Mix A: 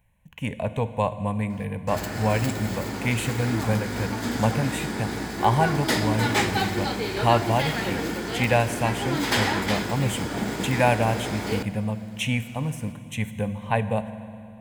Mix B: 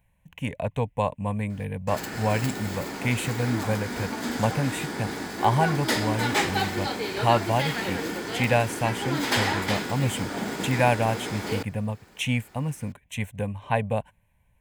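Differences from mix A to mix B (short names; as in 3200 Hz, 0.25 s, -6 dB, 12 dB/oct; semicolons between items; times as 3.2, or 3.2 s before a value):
background: add HPF 180 Hz 6 dB/oct; reverb: off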